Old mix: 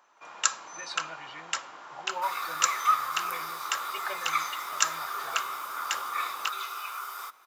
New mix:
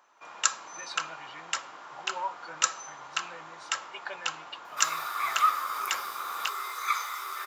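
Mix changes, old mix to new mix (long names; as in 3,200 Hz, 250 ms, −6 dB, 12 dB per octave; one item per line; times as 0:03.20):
second sound: entry +2.55 s
reverb: off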